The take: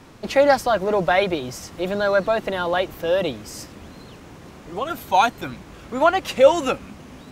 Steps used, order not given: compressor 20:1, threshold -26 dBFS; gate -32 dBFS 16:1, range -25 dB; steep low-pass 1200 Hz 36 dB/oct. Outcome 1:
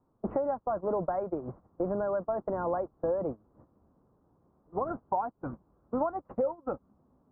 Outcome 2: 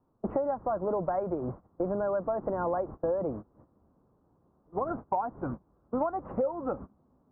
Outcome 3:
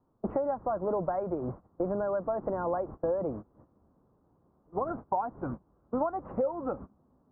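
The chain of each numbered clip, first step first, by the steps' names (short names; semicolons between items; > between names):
compressor > gate > steep low-pass; gate > steep low-pass > compressor; gate > compressor > steep low-pass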